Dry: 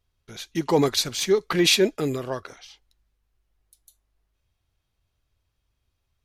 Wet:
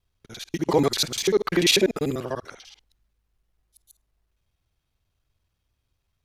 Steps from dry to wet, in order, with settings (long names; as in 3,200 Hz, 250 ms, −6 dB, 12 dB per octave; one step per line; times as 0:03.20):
reversed piece by piece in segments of 49 ms